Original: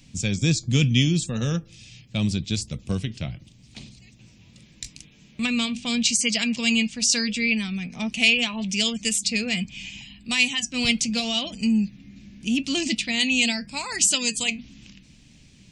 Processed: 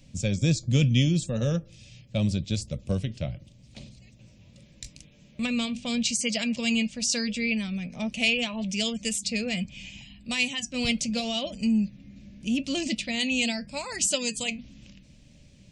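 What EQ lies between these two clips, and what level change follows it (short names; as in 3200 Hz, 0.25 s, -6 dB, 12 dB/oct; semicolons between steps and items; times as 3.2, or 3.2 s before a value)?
low shelf 200 Hz +7 dB; bell 570 Hz +14.5 dB 0.37 oct; -6.0 dB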